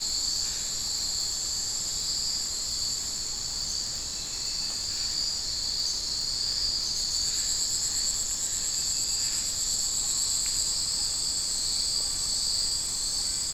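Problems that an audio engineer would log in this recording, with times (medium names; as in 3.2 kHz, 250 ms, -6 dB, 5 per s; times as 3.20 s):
crackle 50 per s -33 dBFS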